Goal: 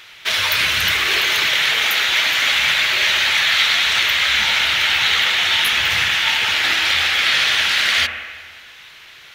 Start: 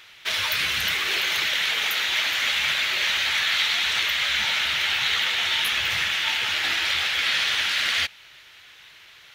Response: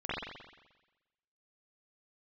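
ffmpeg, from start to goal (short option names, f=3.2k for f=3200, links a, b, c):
-filter_complex "[0:a]asplit=2[a][b];[1:a]atrim=start_sample=2205,asetrate=31752,aresample=44100[c];[b][c]afir=irnorm=-1:irlink=0,volume=-14.5dB[d];[a][d]amix=inputs=2:normalize=0,volume=5.5dB"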